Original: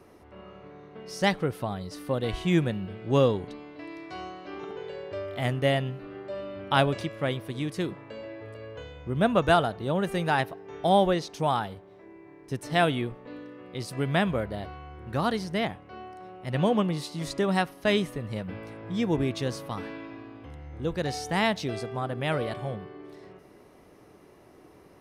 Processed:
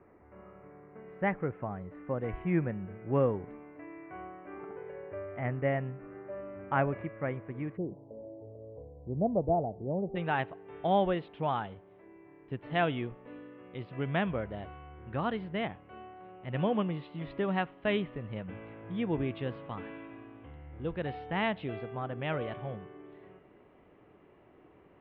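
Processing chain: steep low-pass 2.3 kHz 48 dB/octave, from 7.76 s 800 Hz, from 10.15 s 3.2 kHz; trim -5.5 dB

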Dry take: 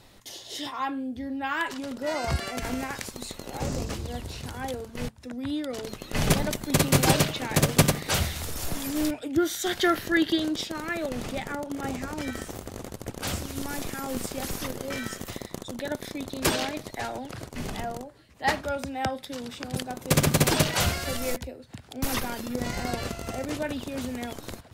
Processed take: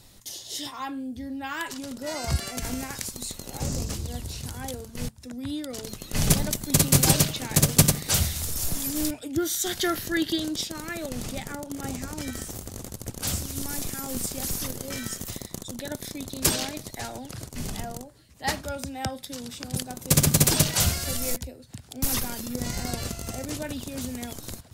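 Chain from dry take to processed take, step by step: tone controls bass +7 dB, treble +12 dB; trim -4.5 dB

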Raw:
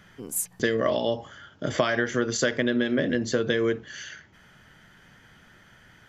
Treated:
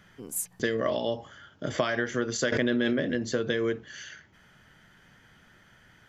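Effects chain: 2.52–2.93 s: level flattener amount 100%; trim -3.5 dB

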